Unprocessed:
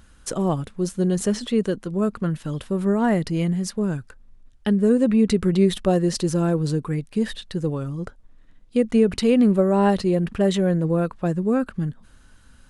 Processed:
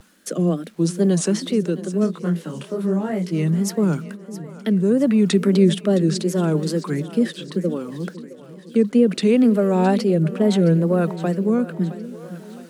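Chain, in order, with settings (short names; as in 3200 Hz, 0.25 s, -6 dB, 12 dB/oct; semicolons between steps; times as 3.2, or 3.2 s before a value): steep high-pass 160 Hz 96 dB/oct; in parallel at -1 dB: limiter -16.5 dBFS, peak gain reduction 9 dB; on the sum: bit-crush 9-bit; wow and flutter 140 cents; rotary speaker horn 0.7 Hz; on a send: split-band echo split 420 Hz, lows 0.504 s, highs 0.665 s, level -15 dB; 2.06–3.31 on the sum: detuned doubles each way 47 cents -> 30 cents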